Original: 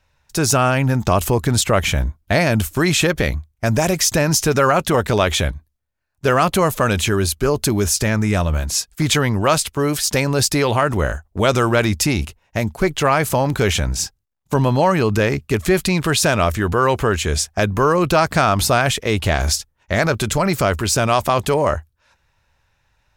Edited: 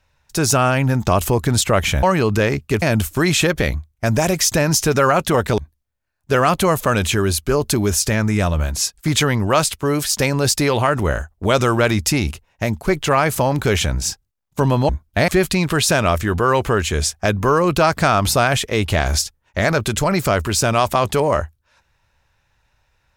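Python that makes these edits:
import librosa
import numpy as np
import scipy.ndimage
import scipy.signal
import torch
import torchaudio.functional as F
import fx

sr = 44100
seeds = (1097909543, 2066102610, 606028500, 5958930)

y = fx.edit(x, sr, fx.swap(start_s=2.03, length_s=0.39, other_s=14.83, other_length_s=0.79),
    fx.cut(start_s=5.18, length_s=0.34), tone=tone)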